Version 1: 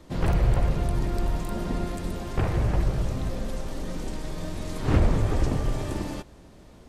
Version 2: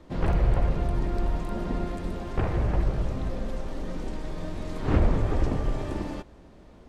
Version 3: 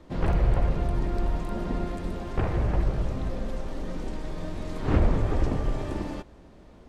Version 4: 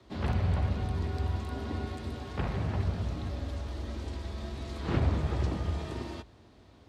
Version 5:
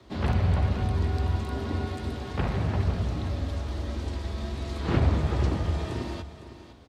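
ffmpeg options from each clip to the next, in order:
ffmpeg -i in.wav -af "lowpass=frequency=2500:poles=1,equalizer=frequency=120:width_type=o:width=0.91:gain=-4" out.wav
ffmpeg -i in.wav -af anull out.wav
ffmpeg -i in.wav -af "afreqshift=47,equalizer=frequency=125:width_type=o:width=1:gain=-4,equalizer=frequency=500:width_type=o:width=1:gain=-4,equalizer=frequency=4000:width_type=o:width=1:gain=7,volume=-4.5dB" out.wav
ffmpeg -i in.wav -af "aecho=1:1:507:0.224,volume=4.5dB" out.wav

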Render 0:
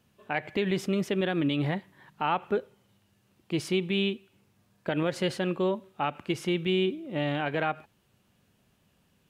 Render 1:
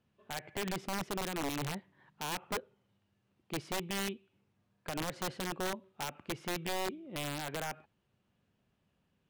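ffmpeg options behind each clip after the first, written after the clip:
ffmpeg -i in.wav -af "aemphasis=mode=reproduction:type=50fm,aeval=exprs='(mod(10.6*val(0)+1,2)-1)/10.6':channel_layout=same,volume=-9dB" out.wav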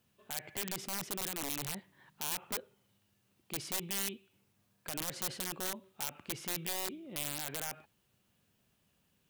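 ffmpeg -i in.wav -af "alimiter=level_in=13dB:limit=-24dB:level=0:latency=1:release=16,volume=-13dB,crystalizer=i=3.5:c=0" out.wav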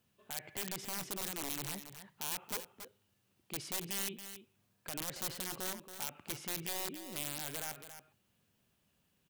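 ffmpeg -i in.wav -af "aecho=1:1:278:0.299,volume=-2dB" out.wav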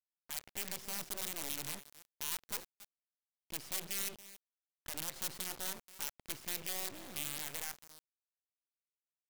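ffmpeg -i in.wav -af "acrusher=bits=5:dc=4:mix=0:aa=0.000001,volume=-1.5dB" out.wav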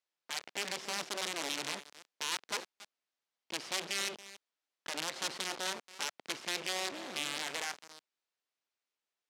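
ffmpeg -i in.wav -af "highpass=300,lowpass=5400,volume=9dB" out.wav

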